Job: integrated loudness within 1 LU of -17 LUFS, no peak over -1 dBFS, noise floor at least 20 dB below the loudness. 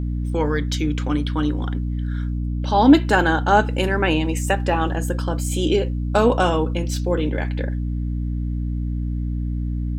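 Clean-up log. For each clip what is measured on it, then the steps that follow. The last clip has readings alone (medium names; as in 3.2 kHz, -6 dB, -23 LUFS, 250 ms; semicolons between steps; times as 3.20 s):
hum 60 Hz; highest harmonic 300 Hz; hum level -21 dBFS; loudness -21.5 LUFS; peak level -1.5 dBFS; loudness target -17.0 LUFS
-> de-hum 60 Hz, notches 5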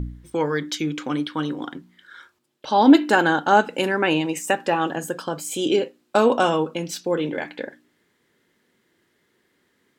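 hum not found; loudness -21.5 LUFS; peak level -3.0 dBFS; loudness target -17.0 LUFS
-> trim +4.5 dB; peak limiter -1 dBFS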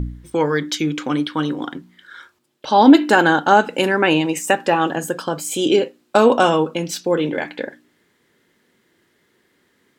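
loudness -17.5 LUFS; peak level -1.0 dBFS; noise floor -64 dBFS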